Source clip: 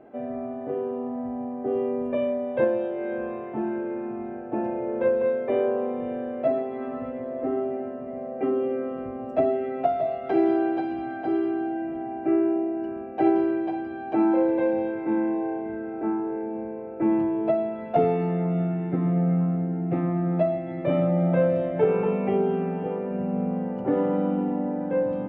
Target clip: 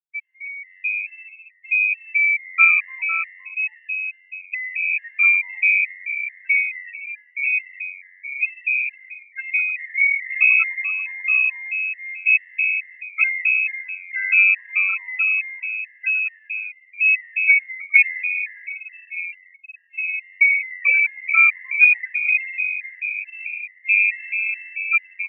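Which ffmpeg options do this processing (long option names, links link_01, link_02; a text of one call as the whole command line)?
ffmpeg -i in.wav -filter_complex "[0:a]highpass=frequency=310:width=0.5412,highpass=frequency=310:width=1.3066,equalizer=frequency=1700:width=1.6:gain=6.5,afftfilt=real='re*gte(hypot(re,im),0.126)':imag='im*gte(hypot(re,im),0.126)':win_size=1024:overlap=0.75,asplit=7[link_01][link_02][link_03][link_04][link_05][link_06][link_07];[link_02]adelay=102,afreqshift=92,volume=-15dB[link_08];[link_03]adelay=204,afreqshift=184,volume=-19.4dB[link_09];[link_04]adelay=306,afreqshift=276,volume=-23.9dB[link_10];[link_05]adelay=408,afreqshift=368,volume=-28.3dB[link_11];[link_06]adelay=510,afreqshift=460,volume=-32.7dB[link_12];[link_07]adelay=612,afreqshift=552,volume=-37.2dB[link_13];[link_01][link_08][link_09][link_10][link_11][link_12][link_13]amix=inputs=7:normalize=0,lowpass=frequency=2500:width_type=q:width=0.5098,lowpass=frequency=2500:width_type=q:width=0.6013,lowpass=frequency=2500:width_type=q:width=0.9,lowpass=frequency=2500:width_type=q:width=2.563,afreqshift=-2900,asuperstop=centerf=780:order=4:qfactor=3.9,afftfilt=real='re*gt(sin(2*PI*2.3*pts/sr)*(1-2*mod(floor(b*sr/1024/530),2)),0)':imag='im*gt(sin(2*PI*2.3*pts/sr)*(1-2*mod(floor(b*sr/1024/530),2)),0)':win_size=1024:overlap=0.75,volume=8.5dB" out.wav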